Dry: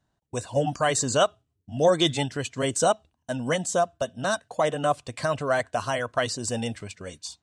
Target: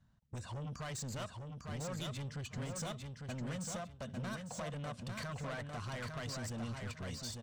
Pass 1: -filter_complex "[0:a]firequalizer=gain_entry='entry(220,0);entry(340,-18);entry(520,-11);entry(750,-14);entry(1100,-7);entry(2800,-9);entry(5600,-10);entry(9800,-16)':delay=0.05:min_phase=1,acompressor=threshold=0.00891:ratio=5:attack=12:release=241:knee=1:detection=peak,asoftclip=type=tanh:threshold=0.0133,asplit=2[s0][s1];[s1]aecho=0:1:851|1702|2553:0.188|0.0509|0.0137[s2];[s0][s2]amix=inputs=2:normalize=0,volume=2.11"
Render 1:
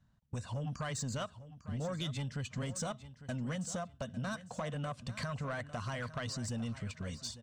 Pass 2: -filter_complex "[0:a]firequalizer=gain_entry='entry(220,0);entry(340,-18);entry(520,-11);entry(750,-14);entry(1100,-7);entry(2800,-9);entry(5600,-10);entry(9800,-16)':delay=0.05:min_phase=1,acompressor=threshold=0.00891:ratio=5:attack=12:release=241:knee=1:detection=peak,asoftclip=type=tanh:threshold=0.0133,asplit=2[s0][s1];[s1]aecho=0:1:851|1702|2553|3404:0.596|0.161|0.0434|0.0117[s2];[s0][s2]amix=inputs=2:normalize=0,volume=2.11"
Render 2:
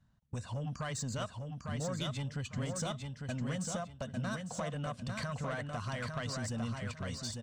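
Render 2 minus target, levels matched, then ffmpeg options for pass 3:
saturation: distortion -8 dB
-filter_complex "[0:a]firequalizer=gain_entry='entry(220,0);entry(340,-18);entry(520,-11);entry(750,-14);entry(1100,-7);entry(2800,-9);entry(5600,-10);entry(9800,-16)':delay=0.05:min_phase=1,acompressor=threshold=0.00891:ratio=5:attack=12:release=241:knee=1:detection=peak,asoftclip=type=tanh:threshold=0.00501,asplit=2[s0][s1];[s1]aecho=0:1:851|1702|2553|3404:0.596|0.161|0.0434|0.0117[s2];[s0][s2]amix=inputs=2:normalize=0,volume=2.11"

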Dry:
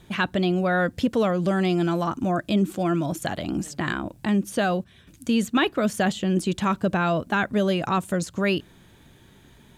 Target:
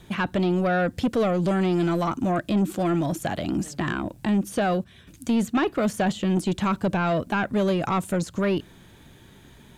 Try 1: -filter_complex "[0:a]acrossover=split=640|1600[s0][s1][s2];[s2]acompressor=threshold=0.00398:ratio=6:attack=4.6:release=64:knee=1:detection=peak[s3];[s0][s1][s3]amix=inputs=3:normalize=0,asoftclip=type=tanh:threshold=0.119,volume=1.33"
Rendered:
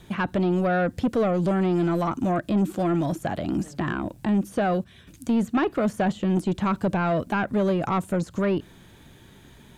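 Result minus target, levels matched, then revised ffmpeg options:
compression: peak gain reduction +8 dB
-filter_complex "[0:a]acrossover=split=640|1600[s0][s1][s2];[s2]acompressor=threshold=0.0119:ratio=6:attack=4.6:release=64:knee=1:detection=peak[s3];[s0][s1][s3]amix=inputs=3:normalize=0,asoftclip=type=tanh:threshold=0.119,volume=1.33"

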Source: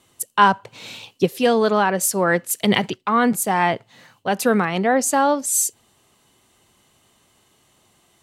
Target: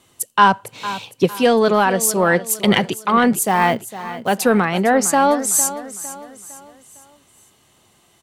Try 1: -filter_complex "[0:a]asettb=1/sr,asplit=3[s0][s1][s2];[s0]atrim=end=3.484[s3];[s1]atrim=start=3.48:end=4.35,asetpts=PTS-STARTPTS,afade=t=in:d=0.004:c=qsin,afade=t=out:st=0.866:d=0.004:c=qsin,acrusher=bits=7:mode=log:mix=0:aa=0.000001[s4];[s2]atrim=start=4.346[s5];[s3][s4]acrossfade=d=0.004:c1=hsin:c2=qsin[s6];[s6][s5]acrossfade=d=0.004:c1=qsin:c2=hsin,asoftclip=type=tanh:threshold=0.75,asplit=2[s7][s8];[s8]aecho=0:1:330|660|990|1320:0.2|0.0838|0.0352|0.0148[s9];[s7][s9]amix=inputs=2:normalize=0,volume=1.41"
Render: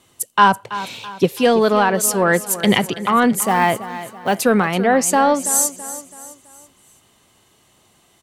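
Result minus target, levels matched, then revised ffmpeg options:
echo 126 ms early
-filter_complex "[0:a]asettb=1/sr,asplit=3[s0][s1][s2];[s0]atrim=end=3.484[s3];[s1]atrim=start=3.48:end=4.35,asetpts=PTS-STARTPTS,afade=t=in:d=0.004:c=qsin,afade=t=out:st=0.866:d=0.004:c=qsin,acrusher=bits=7:mode=log:mix=0:aa=0.000001[s4];[s2]atrim=start=4.346[s5];[s3][s4]acrossfade=d=0.004:c1=hsin:c2=qsin[s6];[s6][s5]acrossfade=d=0.004:c1=qsin:c2=hsin,asoftclip=type=tanh:threshold=0.75,asplit=2[s7][s8];[s8]aecho=0:1:456|912|1368|1824:0.2|0.0838|0.0352|0.0148[s9];[s7][s9]amix=inputs=2:normalize=0,volume=1.41"

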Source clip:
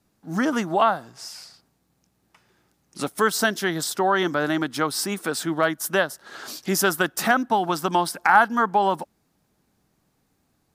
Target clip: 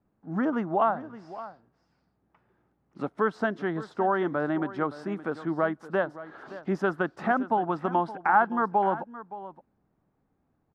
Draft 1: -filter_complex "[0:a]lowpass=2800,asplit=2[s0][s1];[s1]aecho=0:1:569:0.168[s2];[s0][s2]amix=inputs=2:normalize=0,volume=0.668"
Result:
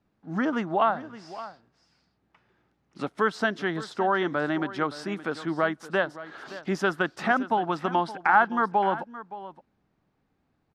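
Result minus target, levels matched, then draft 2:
2 kHz band +3.5 dB
-filter_complex "[0:a]lowpass=1300,asplit=2[s0][s1];[s1]aecho=0:1:569:0.168[s2];[s0][s2]amix=inputs=2:normalize=0,volume=0.668"

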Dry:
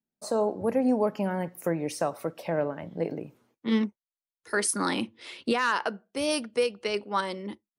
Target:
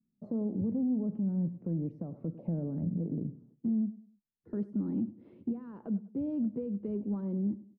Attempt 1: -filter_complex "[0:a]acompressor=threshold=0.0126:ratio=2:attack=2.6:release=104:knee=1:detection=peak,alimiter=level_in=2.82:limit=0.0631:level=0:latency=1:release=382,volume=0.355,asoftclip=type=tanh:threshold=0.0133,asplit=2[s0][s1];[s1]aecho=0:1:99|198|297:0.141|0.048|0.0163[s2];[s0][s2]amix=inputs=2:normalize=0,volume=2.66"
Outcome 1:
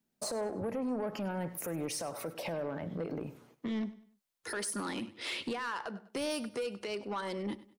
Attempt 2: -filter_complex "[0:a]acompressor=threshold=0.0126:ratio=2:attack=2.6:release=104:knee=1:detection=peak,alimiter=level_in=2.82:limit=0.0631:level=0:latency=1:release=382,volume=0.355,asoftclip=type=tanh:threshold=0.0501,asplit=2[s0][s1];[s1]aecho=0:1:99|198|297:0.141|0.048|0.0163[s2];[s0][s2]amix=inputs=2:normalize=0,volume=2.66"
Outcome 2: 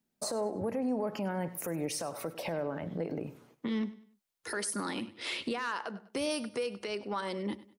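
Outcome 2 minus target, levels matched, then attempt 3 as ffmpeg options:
250 Hz band -4.5 dB
-filter_complex "[0:a]acompressor=threshold=0.0126:ratio=2:attack=2.6:release=104:knee=1:detection=peak,lowpass=f=210:t=q:w=1.8,alimiter=level_in=2.82:limit=0.0631:level=0:latency=1:release=382,volume=0.355,asoftclip=type=tanh:threshold=0.0501,asplit=2[s0][s1];[s1]aecho=0:1:99|198|297:0.141|0.048|0.0163[s2];[s0][s2]amix=inputs=2:normalize=0,volume=2.66"

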